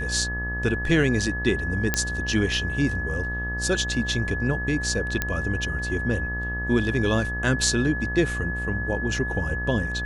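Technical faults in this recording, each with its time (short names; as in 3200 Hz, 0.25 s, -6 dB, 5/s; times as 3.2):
buzz 60 Hz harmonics 22 -31 dBFS
tone 1700 Hz -29 dBFS
1.94 pop -5 dBFS
5.22 pop -8 dBFS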